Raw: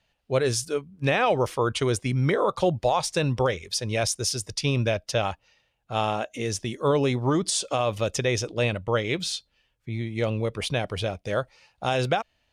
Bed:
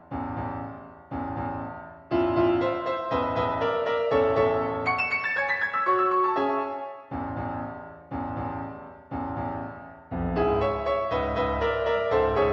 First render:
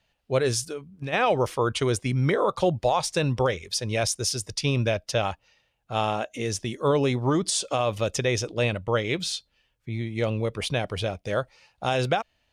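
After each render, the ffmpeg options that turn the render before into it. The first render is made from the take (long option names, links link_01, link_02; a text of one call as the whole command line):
ffmpeg -i in.wav -filter_complex "[0:a]asplit=3[link_01][link_02][link_03];[link_01]afade=type=out:start_time=0.68:duration=0.02[link_04];[link_02]acompressor=threshold=-29dB:ratio=6:attack=3.2:release=140:knee=1:detection=peak,afade=type=in:start_time=0.68:duration=0.02,afade=type=out:start_time=1.12:duration=0.02[link_05];[link_03]afade=type=in:start_time=1.12:duration=0.02[link_06];[link_04][link_05][link_06]amix=inputs=3:normalize=0" out.wav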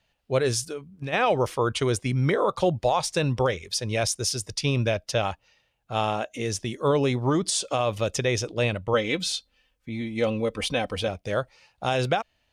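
ffmpeg -i in.wav -filter_complex "[0:a]asettb=1/sr,asplit=3[link_01][link_02][link_03];[link_01]atrim=end=8.934[link_04];[link_02]atrim=start=8.93:end=11.08,asetpts=PTS-STARTPTS,afade=type=in:duration=0.004:curve=qsin,afade=type=out:start_time=2.146:duration=0.004:curve=qsin,aecho=1:1:3.9:0.65,atrim=end_sample=94815[link_05];[link_03]atrim=start=11.076[link_06];[link_04][link_05]acrossfade=duration=0.004:curve1=hsin:curve2=qsin[link_07];[link_07][link_06]acrossfade=duration=0.004:curve1=qsin:curve2=hsin" out.wav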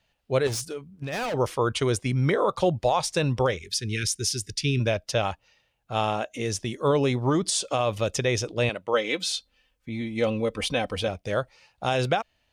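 ffmpeg -i in.wav -filter_complex "[0:a]asettb=1/sr,asplit=3[link_01][link_02][link_03];[link_01]atrim=end=0.474[link_04];[link_02]atrim=start=0.47:end=1.34,asetpts=PTS-STARTPTS,afade=type=in:duration=0.004:curve=qsin,afade=type=out:start_time=0.866:duration=0.004:curve=qsin,volume=27dB,asoftclip=hard,volume=-27dB[link_05];[link_03]atrim=start=1.336[link_06];[link_04][link_05]acrossfade=duration=0.004:curve1=hsin:curve2=qsin[link_07];[link_07][link_06]acrossfade=duration=0.004:curve1=qsin:curve2=hsin,asplit=3[link_08][link_09][link_10];[link_08]afade=type=out:start_time=3.59:duration=0.02[link_11];[link_09]asuperstop=centerf=790:order=12:qfactor=0.77,afade=type=in:start_time=3.59:duration=0.02,afade=type=out:start_time=4.79:duration=0.02[link_12];[link_10]afade=type=in:start_time=4.79:duration=0.02[link_13];[link_11][link_12][link_13]amix=inputs=3:normalize=0,asettb=1/sr,asplit=3[link_14][link_15][link_16];[link_14]atrim=end=8.694[link_17];[link_15]atrim=start=8.69:end=9.36,asetpts=PTS-STARTPTS,afade=type=in:duration=0.004:curve=qsin,afade=type=out:start_time=0.666:duration=0.004:curve=qsin,highpass=300[link_18];[link_16]atrim=start=9.356[link_19];[link_17][link_18]acrossfade=duration=0.004:curve1=hsin:curve2=qsin[link_20];[link_20][link_19]acrossfade=duration=0.004:curve1=qsin:curve2=hsin" out.wav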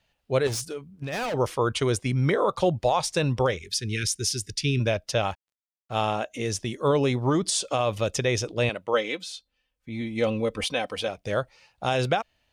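ffmpeg -i in.wav -filter_complex "[0:a]asettb=1/sr,asplit=3[link_01][link_02][link_03];[link_01]atrim=end=5.304[link_04];[link_02]atrim=start=5.3:end=6.02,asetpts=PTS-STARTPTS,afade=type=in:duration=0.004:curve=qsin,afade=type=out:start_time=0.716:duration=0.004:curve=qsin,aeval=exprs='sgn(val(0))*max(abs(val(0))-0.00251,0)':channel_layout=same[link_05];[link_03]atrim=start=6.016[link_06];[link_04][link_05]acrossfade=duration=0.004:curve1=hsin:curve2=qsin[link_07];[link_07][link_06]acrossfade=duration=0.004:curve1=qsin:curve2=hsin,asettb=1/sr,asplit=3[link_08][link_09][link_10];[link_08]atrim=end=10.644[link_11];[link_09]atrim=start=10.64:end=11.18,asetpts=PTS-STARTPTS,afade=type=in:duration=0.004:curve=qsin,afade=type=out:start_time=0.536:duration=0.004:curve=qsin,highpass=frequency=350:poles=1[link_12];[link_10]atrim=start=11.176[link_13];[link_11][link_12]acrossfade=duration=0.004:curve1=hsin:curve2=qsin[link_14];[link_14][link_13]acrossfade=duration=0.004:curve1=qsin:curve2=hsin,asplit=3[link_15][link_16][link_17];[link_15]atrim=end=9.26,asetpts=PTS-STARTPTS,afade=type=out:start_time=9:duration=0.26:silence=0.334965[link_18];[link_16]atrim=start=9.26:end=9.74,asetpts=PTS-STARTPTS,volume=-9.5dB[link_19];[link_17]atrim=start=9.74,asetpts=PTS-STARTPTS,afade=type=in:duration=0.26:silence=0.334965[link_20];[link_18][link_19][link_20]concat=n=3:v=0:a=1" out.wav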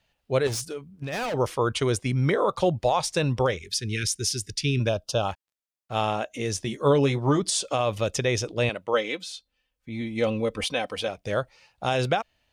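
ffmpeg -i in.wav -filter_complex "[0:a]asettb=1/sr,asplit=3[link_01][link_02][link_03];[link_01]atrim=end=4.894[link_04];[link_02]atrim=start=4.89:end=5.29,asetpts=PTS-STARTPTS,afade=type=in:duration=0.004:curve=qsin,afade=type=out:start_time=0.396:duration=0.004:curve=qsin,asuperstop=centerf=2000:order=4:qfactor=1.5[link_05];[link_03]atrim=start=5.286[link_06];[link_04][link_05]acrossfade=duration=0.004:curve1=hsin:curve2=qsin[link_07];[link_07][link_06]acrossfade=duration=0.004:curve1=qsin:curve2=hsin,asettb=1/sr,asplit=3[link_08][link_09][link_10];[link_08]atrim=end=6.564[link_11];[link_09]atrim=start=6.56:end=7.4,asetpts=PTS-STARTPTS,afade=type=in:duration=0.004:curve=qsin,afade=type=out:start_time=0.836:duration=0.004:curve=qsin,asplit=2[link_12][link_13];[link_13]adelay=14,volume=-7dB[link_14];[link_12][link_14]amix=inputs=2:normalize=0,atrim=end_sample=37044[link_15];[link_10]atrim=start=7.396[link_16];[link_11][link_15]acrossfade=duration=0.004:curve1=hsin:curve2=qsin[link_17];[link_17][link_16]acrossfade=duration=0.004:curve1=qsin:curve2=hsin" out.wav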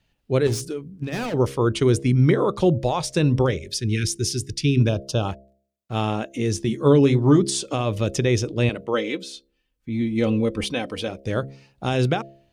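ffmpeg -i in.wav -af "lowshelf=frequency=450:width_type=q:width=1.5:gain=7,bandreject=frequency=67.77:width_type=h:width=4,bandreject=frequency=135.54:width_type=h:width=4,bandreject=frequency=203.31:width_type=h:width=4,bandreject=frequency=271.08:width_type=h:width=4,bandreject=frequency=338.85:width_type=h:width=4,bandreject=frequency=406.62:width_type=h:width=4,bandreject=frequency=474.39:width_type=h:width=4,bandreject=frequency=542.16:width_type=h:width=4,bandreject=frequency=609.93:width_type=h:width=4,bandreject=frequency=677.7:width_type=h:width=4" out.wav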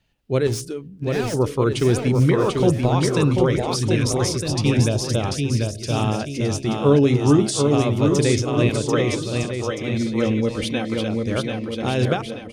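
ffmpeg -i in.wav -af "aecho=1:1:740|1258|1621|1874|2052:0.631|0.398|0.251|0.158|0.1" out.wav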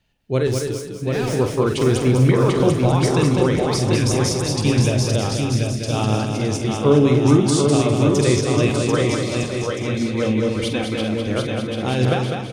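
ffmpeg -i in.wav -filter_complex "[0:a]asplit=2[link_01][link_02];[link_02]adelay=47,volume=-9dB[link_03];[link_01][link_03]amix=inputs=2:normalize=0,aecho=1:1:202|404|606|808:0.531|0.186|0.065|0.0228" out.wav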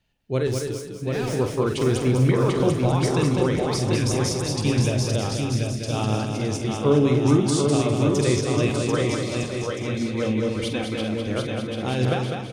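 ffmpeg -i in.wav -af "volume=-4dB" out.wav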